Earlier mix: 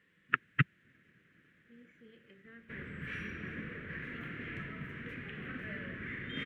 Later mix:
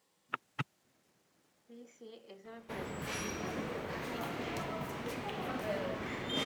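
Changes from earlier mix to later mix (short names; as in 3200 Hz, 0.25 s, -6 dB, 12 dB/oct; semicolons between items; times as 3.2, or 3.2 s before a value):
first voice -10.5 dB; master: remove EQ curve 170 Hz 0 dB, 480 Hz -10 dB, 830 Hz -27 dB, 1700 Hz +6 dB, 3100 Hz -7 dB, 4600 Hz -25 dB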